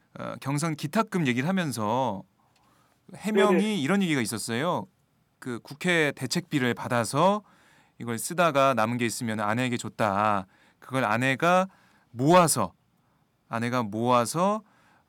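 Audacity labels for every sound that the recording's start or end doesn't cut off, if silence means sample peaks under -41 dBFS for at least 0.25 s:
3.090000	4.840000	sound
5.420000	7.400000	sound
8.000000	10.440000	sound
10.820000	11.670000	sound
12.150000	12.680000	sound
13.510000	14.600000	sound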